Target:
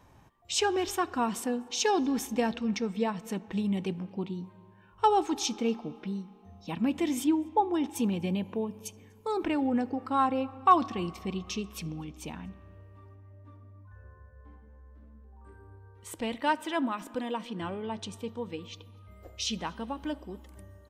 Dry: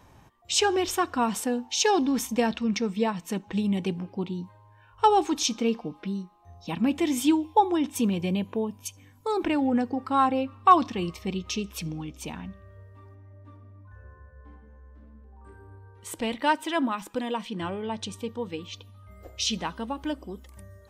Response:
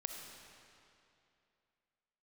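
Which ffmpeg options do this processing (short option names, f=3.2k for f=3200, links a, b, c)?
-filter_complex "[0:a]asettb=1/sr,asplit=3[a][b][c];[a]atrim=end=7.244[d];[b]atrim=start=7.24:end=7.74,asetpts=PTS-STARTPTS,afade=t=in:d=0.004:c=qsin,afade=t=out:st=0.496:d=0.004:c=qsin,highshelf=f=2.1k:g=-12[e];[c]atrim=start=7.736[f];[d][e]acrossfade=d=0.004:c1=hsin:c2=qsin[g];[g][f]acrossfade=d=0.004:c1=qsin:c2=hsin,asplit=2[h][i];[i]adelay=244.9,volume=-27dB,highshelf=f=4k:g=-5.51[j];[h][j]amix=inputs=2:normalize=0,asplit=2[k][l];[1:a]atrim=start_sample=2205,lowpass=2.9k[m];[l][m]afir=irnorm=-1:irlink=0,volume=-12.5dB[n];[k][n]amix=inputs=2:normalize=0,volume=-5dB"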